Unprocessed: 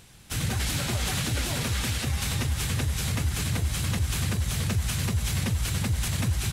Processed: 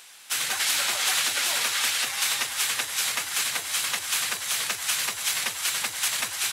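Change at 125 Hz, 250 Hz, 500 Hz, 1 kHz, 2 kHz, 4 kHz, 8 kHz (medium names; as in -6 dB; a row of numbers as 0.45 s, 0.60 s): -30.0 dB, -18.0 dB, -4.0 dB, +4.5 dB, +7.0 dB, +7.5 dB, +7.5 dB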